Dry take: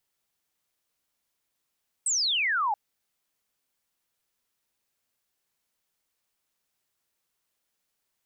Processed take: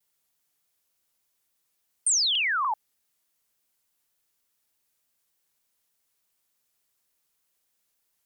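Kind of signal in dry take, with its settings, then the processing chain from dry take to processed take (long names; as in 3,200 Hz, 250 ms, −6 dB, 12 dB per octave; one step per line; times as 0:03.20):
single falling chirp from 8,400 Hz, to 790 Hz, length 0.68 s sine, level −23 dB
high-shelf EQ 6,400 Hz +7 dB
pitch modulation by a square or saw wave saw down 3.4 Hz, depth 160 cents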